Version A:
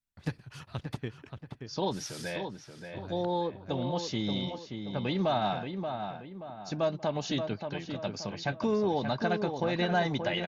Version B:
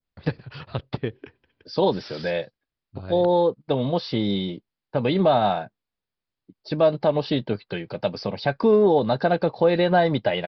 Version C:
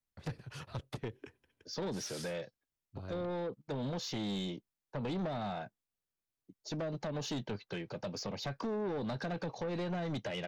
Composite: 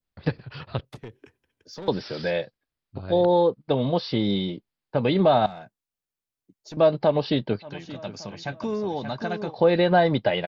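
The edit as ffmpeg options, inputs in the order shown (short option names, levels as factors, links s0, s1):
-filter_complex "[2:a]asplit=2[s0][s1];[1:a]asplit=4[s2][s3][s4][s5];[s2]atrim=end=0.852[s6];[s0]atrim=start=0.848:end=1.882[s7];[s3]atrim=start=1.878:end=5.462[s8];[s1]atrim=start=5.458:end=6.772[s9];[s4]atrim=start=6.768:end=7.7[s10];[0:a]atrim=start=7.6:end=9.56[s11];[s5]atrim=start=9.46[s12];[s6][s7]acrossfade=d=0.004:c1=hsin:c2=hsin[s13];[s13][s8]acrossfade=d=0.004:c1=hsin:c2=hsin[s14];[s14][s9]acrossfade=d=0.004:c1=hsin:c2=hsin[s15];[s15][s10]acrossfade=d=0.004:c1=hsin:c2=hsin[s16];[s16][s11]acrossfade=d=0.1:c1=tri:c2=tri[s17];[s17][s12]acrossfade=d=0.1:c1=tri:c2=tri"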